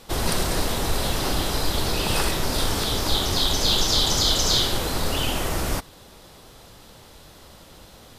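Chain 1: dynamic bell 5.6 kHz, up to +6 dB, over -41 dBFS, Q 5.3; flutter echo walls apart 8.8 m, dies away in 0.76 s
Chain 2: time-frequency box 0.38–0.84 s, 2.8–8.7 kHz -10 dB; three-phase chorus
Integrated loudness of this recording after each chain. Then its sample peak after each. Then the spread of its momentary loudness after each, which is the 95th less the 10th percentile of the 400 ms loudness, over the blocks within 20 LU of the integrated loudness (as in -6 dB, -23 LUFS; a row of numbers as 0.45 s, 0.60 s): -19.5 LUFS, -25.5 LUFS; -5.0 dBFS, -9.0 dBFS; 8 LU, 7 LU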